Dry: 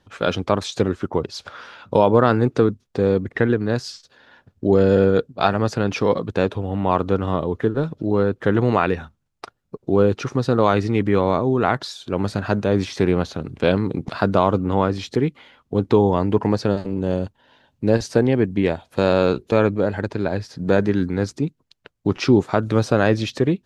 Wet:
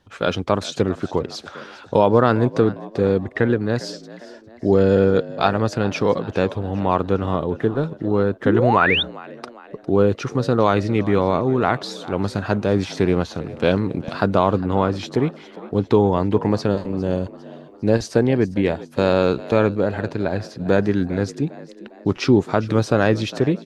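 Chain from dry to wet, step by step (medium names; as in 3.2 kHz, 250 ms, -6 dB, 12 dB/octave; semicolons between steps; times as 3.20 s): frequency-shifting echo 404 ms, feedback 48%, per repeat +59 Hz, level -18 dB; painted sound rise, 8.45–9.03 s, 230–3800 Hz -19 dBFS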